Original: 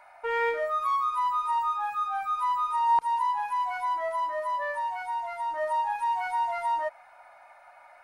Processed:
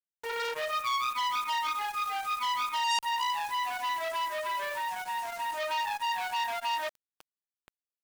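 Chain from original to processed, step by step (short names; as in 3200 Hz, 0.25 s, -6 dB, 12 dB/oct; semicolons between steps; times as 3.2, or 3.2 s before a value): bit-crush 7-bit; core saturation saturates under 3700 Hz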